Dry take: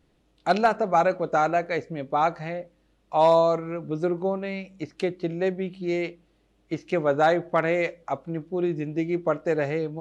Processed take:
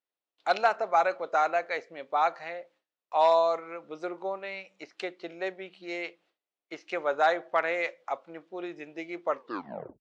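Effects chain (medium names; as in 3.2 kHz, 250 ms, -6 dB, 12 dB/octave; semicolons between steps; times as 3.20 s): tape stop on the ending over 0.72 s; gate with hold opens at -51 dBFS; band-pass 670–5900 Hz; trim -1 dB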